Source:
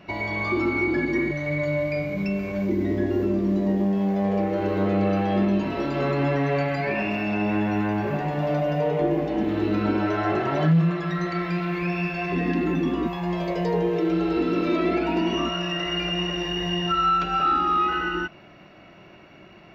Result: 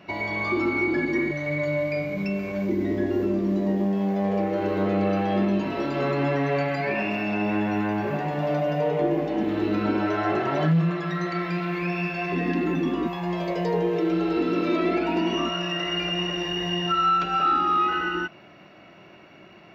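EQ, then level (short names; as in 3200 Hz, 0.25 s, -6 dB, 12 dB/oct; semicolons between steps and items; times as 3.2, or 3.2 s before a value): HPF 130 Hz 6 dB/oct; 0.0 dB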